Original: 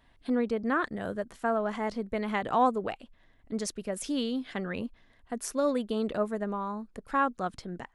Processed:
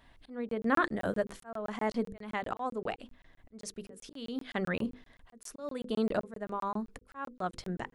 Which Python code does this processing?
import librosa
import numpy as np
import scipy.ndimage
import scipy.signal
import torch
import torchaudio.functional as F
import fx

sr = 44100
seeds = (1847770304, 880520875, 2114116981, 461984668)

y = fx.auto_swell(x, sr, attack_ms=564.0)
y = fx.hum_notches(y, sr, base_hz=50, count=10)
y = fx.buffer_crackle(y, sr, first_s=0.49, period_s=0.13, block=1024, kind='zero')
y = y * 10.0 ** (3.0 / 20.0)